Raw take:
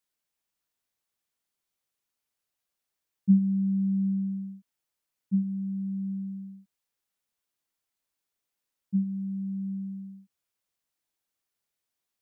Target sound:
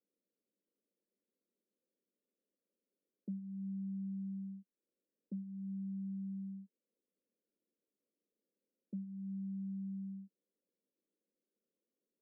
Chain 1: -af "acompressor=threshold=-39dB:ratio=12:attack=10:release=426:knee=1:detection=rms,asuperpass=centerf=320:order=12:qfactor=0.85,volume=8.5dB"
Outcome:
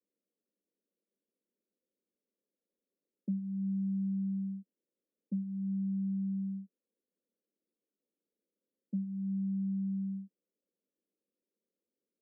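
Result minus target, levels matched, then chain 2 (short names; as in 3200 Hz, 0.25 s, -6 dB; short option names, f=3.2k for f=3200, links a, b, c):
compressor: peak gain reduction -8 dB
-af "acompressor=threshold=-47.5dB:ratio=12:attack=10:release=426:knee=1:detection=rms,asuperpass=centerf=320:order=12:qfactor=0.85,volume=8.5dB"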